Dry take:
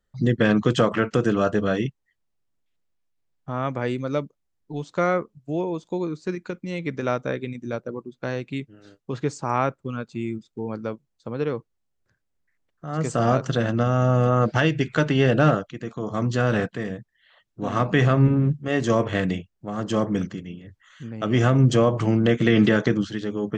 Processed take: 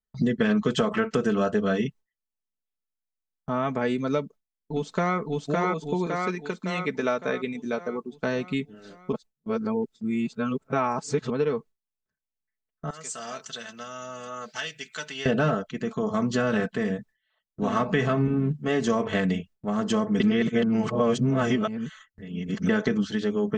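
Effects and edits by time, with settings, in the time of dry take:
4.2–5.17 echo throw 0.56 s, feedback 55%, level -1 dB
6.06–8.13 low shelf 180 Hz -11 dB
9.12–11.3 reverse
12.9–15.26 pre-emphasis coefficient 0.97
20.2–22.69 reverse
whole clip: gate with hold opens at -42 dBFS; comb 4.6 ms, depth 68%; compressor 3:1, threshold -24 dBFS; gain +2 dB

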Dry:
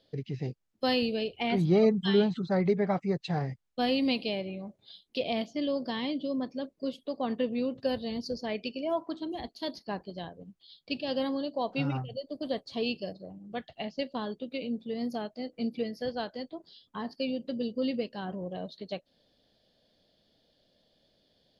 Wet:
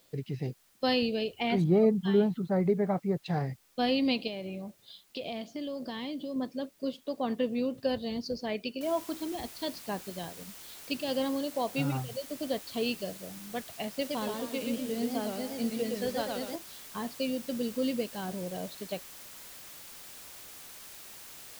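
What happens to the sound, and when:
1.64–3.26 LPF 1100 Hz 6 dB/oct
4.27–6.36 compressor, threshold -33 dBFS
8.81 noise floor step -66 dB -48 dB
13.89–16.56 warbling echo 0.12 s, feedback 45%, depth 169 cents, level -3.5 dB

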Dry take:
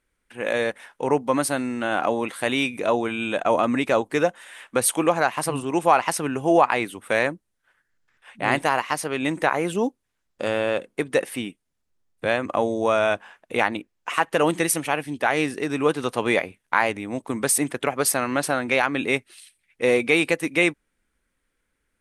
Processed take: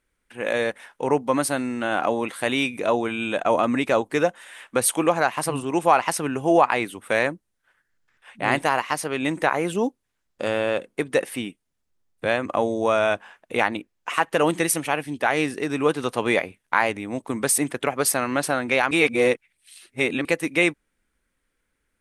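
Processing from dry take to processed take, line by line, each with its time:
18.91–20.25 reverse

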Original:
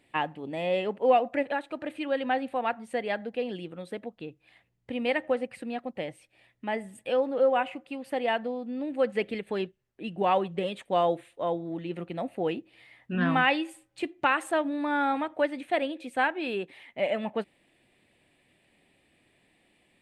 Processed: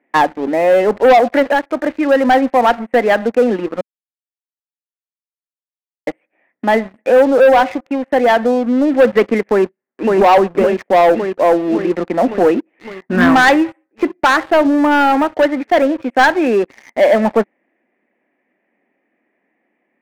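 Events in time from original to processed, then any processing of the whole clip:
3.81–6.07 mute
9.47–10.14 echo throw 0.56 s, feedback 70%, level -1.5 dB
whole clip: elliptic band-pass 220–2000 Hz; sample leveller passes 3; vocal rider 2 s; gain +7.5 dB

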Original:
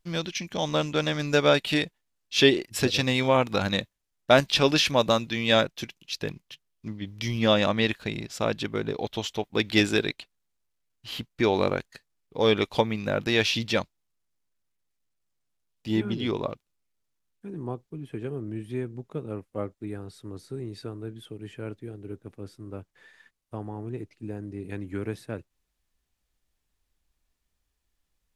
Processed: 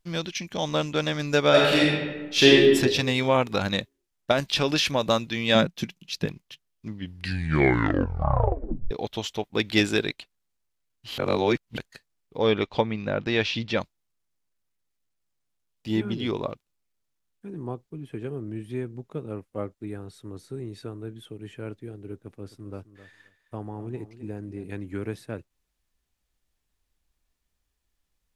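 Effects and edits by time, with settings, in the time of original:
1.49–2.56 reverb throw, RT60 1.3 s, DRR -4.5 dB
4.31–5.03 compressor 4:1, threshold -18 dBFS
5.55–6.26 bell 180 Hz +13 dB
6.9 tape stop 2.01 s
11.18–11.78 reverse
12.38–13.81 air absorption 140 m
19.93–21.56 notch 4800 Hz
22.17–24.64 feedback echo 0.262 s, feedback 16%, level -14 dB

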